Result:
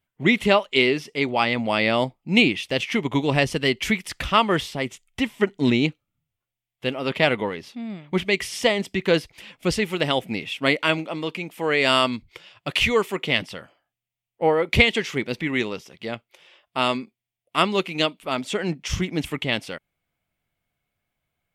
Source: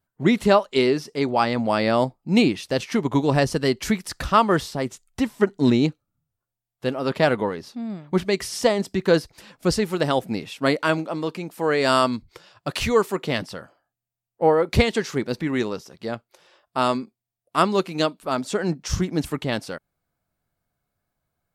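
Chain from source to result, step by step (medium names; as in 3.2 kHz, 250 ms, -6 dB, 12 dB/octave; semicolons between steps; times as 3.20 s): high-order bell 2.6 kHz +10.5 dB 1 oct; trim -2 dB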